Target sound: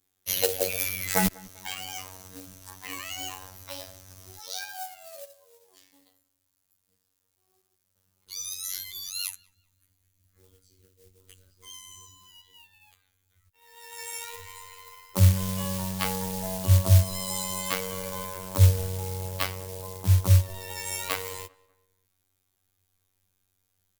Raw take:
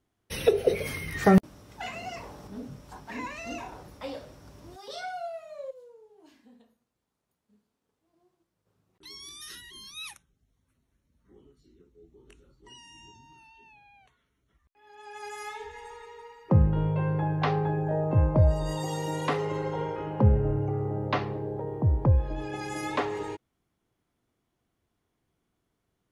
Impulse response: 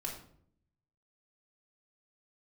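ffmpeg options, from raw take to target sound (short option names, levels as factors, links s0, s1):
-filter_complex "[0:a]asubboost=boost=6.5:cutoff=79,afftfilt=real='hypot(re,im)*cos(PI*b)':imag='0':win_size=2048:overlap=0.75,acrossover=split=110[s0][s1];[s1]acrusher=bits=4:mode=log:mix=0:aa=0.000001[s2];[s0][s2]amix=inputs=2:normalize=0,crystalizer=i=7.5:c=0,asplit=2[s3][s4];[s4]adelay=213,lowpass=f=2200:p=1,volume=0.075,asplit=2[s5][s6];[s6]adelay=213,lowpass=f=2200:p=1,volume=0.43,asplit=2[s7][s8];[s8]adelay=213,lowpass=f=2200:p=1,volume=0.43[s9];[s5][s7][s9]amix=inputs=3:normalize=0[s10];[s3][s10]amix=inputs=2:normalize=0,asetrate=48000,aresample=44100,volume=0.708"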